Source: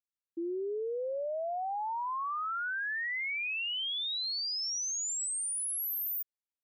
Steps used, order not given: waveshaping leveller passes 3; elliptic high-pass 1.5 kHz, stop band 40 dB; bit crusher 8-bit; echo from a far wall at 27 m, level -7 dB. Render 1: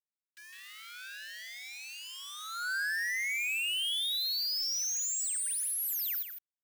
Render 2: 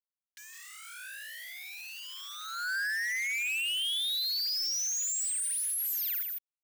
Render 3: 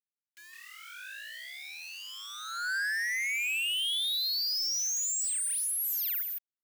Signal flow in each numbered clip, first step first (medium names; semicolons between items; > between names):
waveshaping leveller > echo from a far wall > bit crusher > elliptic high-pass; bit crusher > echo from a far wall > waveshaping leveller > elliptic high-pass; echo from a far wall > waveshaping leveller > bit crusher > elliptic high-pass